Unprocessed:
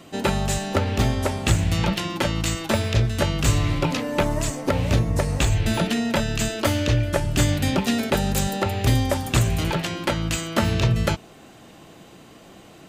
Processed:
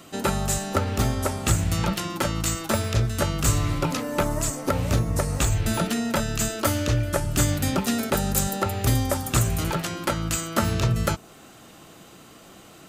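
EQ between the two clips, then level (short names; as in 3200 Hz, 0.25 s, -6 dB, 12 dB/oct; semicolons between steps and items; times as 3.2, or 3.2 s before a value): dynamic EQ 3100 Hz, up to -5 dB, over -40 dBFS, Q 0.87; bell 1300 Hz +7 dB 0.32 oct; high shelf 5300 Hz +9.5 dB; -2.5 dB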